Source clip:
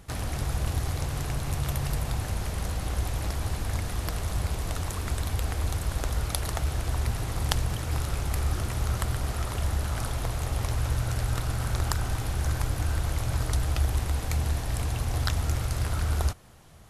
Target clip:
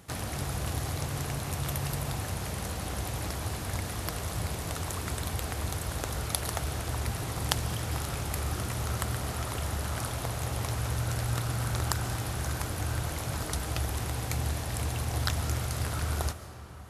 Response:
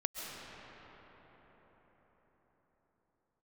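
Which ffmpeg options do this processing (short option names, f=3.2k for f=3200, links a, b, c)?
-filter_complex "[0:a]highpass=94,asplit=2[a][b];[1:a]atrim=start_sample=2205,highshelf=f=6.1k:g=10[c];[b][c]afir=irnorm=-1:irlink=0,volume=-11dB[d];[a][d]amix=inputs=2:normalize=0,volume=-2.5dB"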